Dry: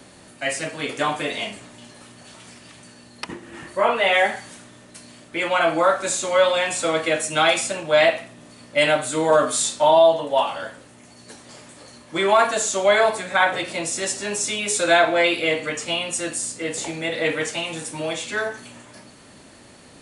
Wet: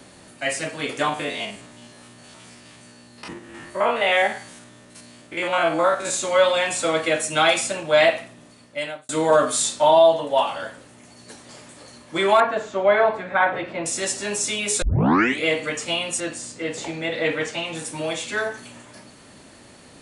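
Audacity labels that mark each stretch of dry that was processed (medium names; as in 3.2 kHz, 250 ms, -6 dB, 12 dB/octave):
1.090000	6.140000	spectrogram pixelated in time every 50 ms
8.200000	9.090000	fade out
12.400000	13.860000	low-pass 1.9 kHz
14.820000	14.820000	tape start 0.63 s
16.200000	17.750000	distance through air 76 m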